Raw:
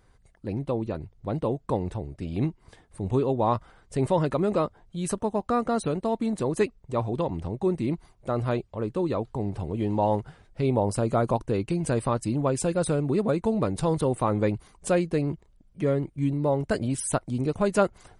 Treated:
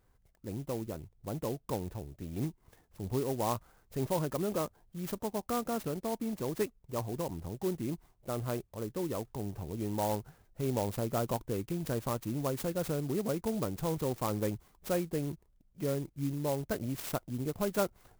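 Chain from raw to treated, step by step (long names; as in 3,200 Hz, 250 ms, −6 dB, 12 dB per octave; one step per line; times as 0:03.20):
converter with an unsteady clock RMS 0.067 ms
level −8.5 dB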